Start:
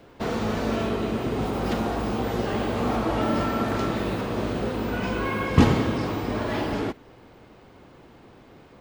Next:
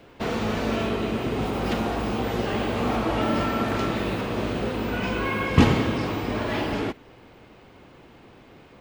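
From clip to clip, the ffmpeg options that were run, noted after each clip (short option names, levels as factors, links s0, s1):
-af "equalizer=f=2600:t=o:w=0.92:g=4.5"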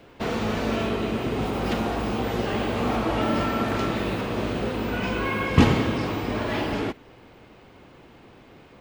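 -af anull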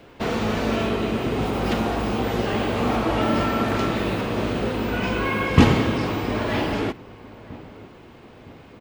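-filter_complex "[0:a]asplit=2[s0][s1];[s1]adelay=962,lowpass=f=1400:p=1,volume=0.1,asplit=2[s2][s3];[s3]adelay=962,lowpass=f=1400:p=1,volume=0.47,asplit=2[s4][s5];[s5]adelay=962,lowpass=f=1400:p=1,volume=0.47,asplit=2[s6][s7];[s7]adelay=962,lowpass=f=1400:p=1,volume=0.47[s8];[s0][s2][s4][s6][s8]amix=inputs=5:normalize=0,volume=1.33"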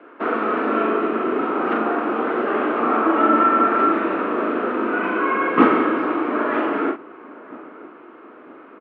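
-filter_complex "[0:a]highpass=f=290:w=0.5412,highpass=f=290:w=1.3066,equalizer=f=310:t=q:w=4:g=5,equalizer=f=520:t=q:w=4:g=-4,equalizer=f=810:t=q:w=4:g=-5,equalizer=f=1300:t=q:w=4:g=9,equalizer=f=2000:t=q:w=4:g=-4,lowpass=f=2100:w=0.5412,lowpass=f=2100:w=1.3066,asplit=2[s0][s1];[s1]adelay=40,volume=0.531[s2];[s0][s2]amix=inputs=2:normalize=0,volume=1.5"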